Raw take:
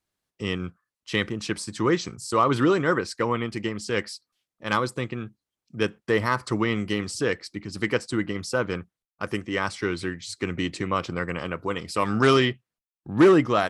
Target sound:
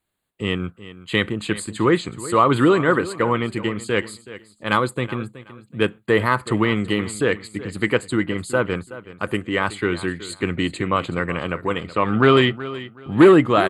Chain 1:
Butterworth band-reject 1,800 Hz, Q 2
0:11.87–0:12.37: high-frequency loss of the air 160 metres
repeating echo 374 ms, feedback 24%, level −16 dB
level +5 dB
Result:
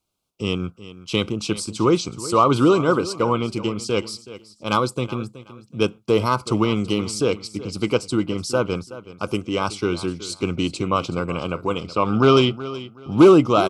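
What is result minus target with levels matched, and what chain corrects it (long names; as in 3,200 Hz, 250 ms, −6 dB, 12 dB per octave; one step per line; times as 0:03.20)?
2,000 Hz band −7.0 dB
Butterworth band-reject 5,600 Hz, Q 2
0:11.87–0:12.37: high-frequency loss of the air 160 metres
repeating echo 374 ms, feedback 24%, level −16 dB
level +5 dB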